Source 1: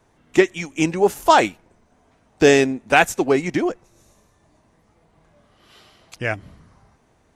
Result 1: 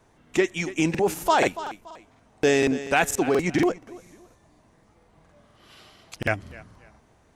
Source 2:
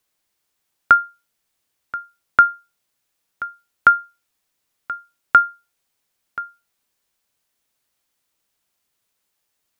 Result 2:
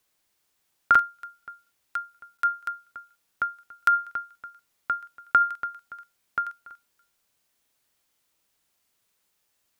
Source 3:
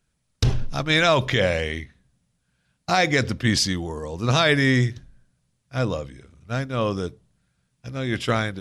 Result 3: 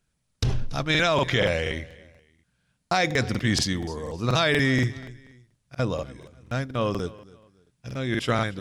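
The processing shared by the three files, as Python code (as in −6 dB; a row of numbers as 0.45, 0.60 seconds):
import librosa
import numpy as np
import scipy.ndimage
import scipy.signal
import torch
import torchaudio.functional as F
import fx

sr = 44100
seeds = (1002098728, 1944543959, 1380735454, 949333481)

p1 = fx.echo_feedback(x, sr, ms=285, feedback_pct=30, wet_db=-21.0)
p2 = fx.over_compress(p1, sr, threshold_db=-19.0, ratio=-0.5)
p3 = p1 + (p2 * librosa.db_to_amplitude(-0.5))
p4 = fx.buffer_crackle(p3, sr, first_s=0.9, period_s=0.24, block=2048, kind='repeat')
y = p4 * librosa.db_to_amplitude(-8.0)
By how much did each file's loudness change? −5.5, −9.5, −3.0 LU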